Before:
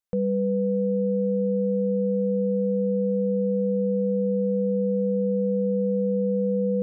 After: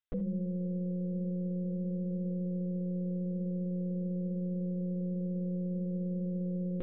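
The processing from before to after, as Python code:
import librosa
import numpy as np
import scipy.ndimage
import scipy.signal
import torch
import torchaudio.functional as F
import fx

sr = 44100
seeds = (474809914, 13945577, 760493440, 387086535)

y = fx.peak_eq(x, sr, hz=420.0, db=-12.5, octaves=2.0)
y = fx.lpc_monotone(y, sr, seeds[0], pitch_hz=180.0, order=16)
y = fx.peak_eq(y, sr, hz=180.0, db=-3.5, octaves=0.33)
y = fx.rev_gated(y, sr, seeds[1], gate_ms=90, shape='rising', drr_db=9.5)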